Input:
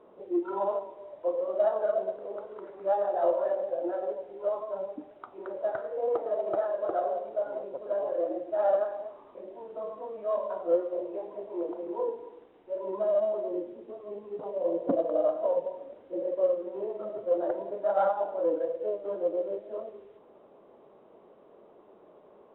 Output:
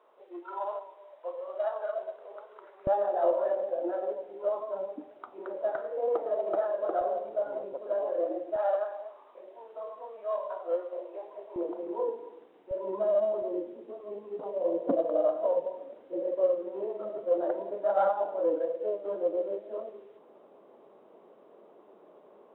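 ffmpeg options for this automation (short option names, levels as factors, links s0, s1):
-af "asetnsamples=n=441:p=0,asendcmd='2.87 highpass f 210;7.01 highpass f 84;7.73 highpass f 240;8.56 highpass f 620;11.56 highpass f 190;12.71 highpass f 85;13.42 highpass f 190',highpass=830"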